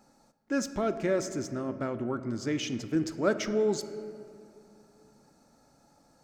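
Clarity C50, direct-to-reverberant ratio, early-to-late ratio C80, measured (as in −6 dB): 11.5 dB, 10.0 dB, 12.5 dB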